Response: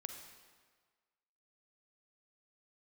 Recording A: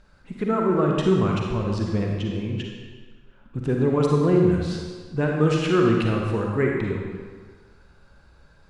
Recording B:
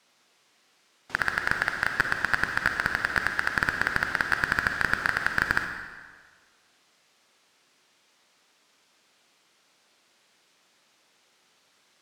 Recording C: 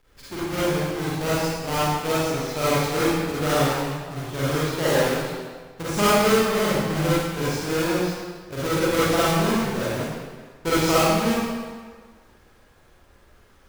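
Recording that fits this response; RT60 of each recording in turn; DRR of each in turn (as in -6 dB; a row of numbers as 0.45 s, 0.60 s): B; 1.6 s, 1.6 s, 1.6 s; -0.5 dB, 5.0 dB, -10.0 dB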